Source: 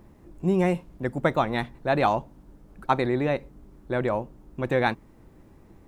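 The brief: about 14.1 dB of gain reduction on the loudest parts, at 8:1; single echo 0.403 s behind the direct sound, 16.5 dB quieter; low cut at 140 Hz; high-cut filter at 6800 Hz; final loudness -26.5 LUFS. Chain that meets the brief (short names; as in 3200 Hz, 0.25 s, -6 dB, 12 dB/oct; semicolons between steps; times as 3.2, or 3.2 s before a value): HPF 140 Hz; LPF 6800 Hz; compressor 8:1, threshold -32 dBFS; echo 0.403 s -16.5 dB; gain +11.5 dB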